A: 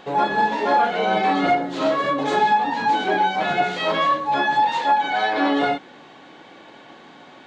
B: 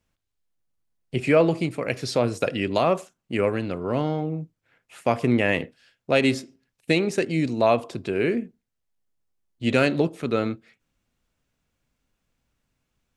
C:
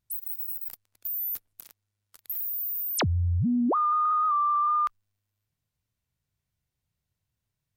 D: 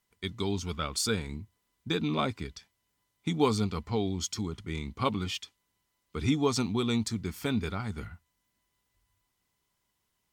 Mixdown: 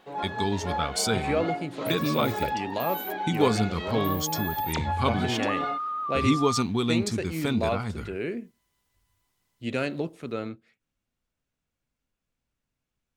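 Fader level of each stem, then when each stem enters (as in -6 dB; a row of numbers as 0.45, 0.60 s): -13.0, -8.5, -7.0, +3.0 dB; 0.00, 0.00, 1.75, 0.00 s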